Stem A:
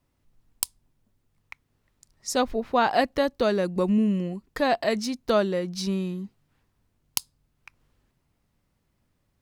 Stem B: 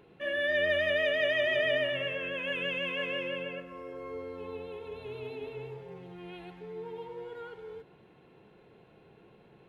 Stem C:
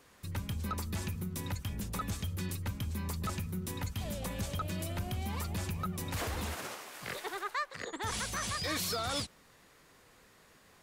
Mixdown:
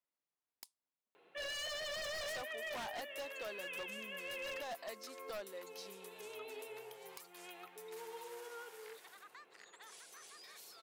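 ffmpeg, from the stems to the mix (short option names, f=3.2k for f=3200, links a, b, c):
-filter_complex "[0:a]volume=-18.5dB,asplit=2[a][b];[1:a]alimiter=limit=-23dB:level=0:latency=1:release=268,adelay=1150,volume=-3.5dB[c];[2:a]highpass=1k,highshelf=f=8.4k:g=6.5,acompressor=threshold=-42dB:ratio=6,adelay=1800,volume=-12dB[d];[b]apad=whole_len=477609[e];[c][e]sidechaincompress=threshold=-48dB:ratio=5:attack=34:release=438[f];[a][f][d]amix=inputs=3:normalize=0,highpass=550,aeval=exprs='0.0141*(abs(mod(val(0)/0.0141+3,4)-2)-1)':c=same"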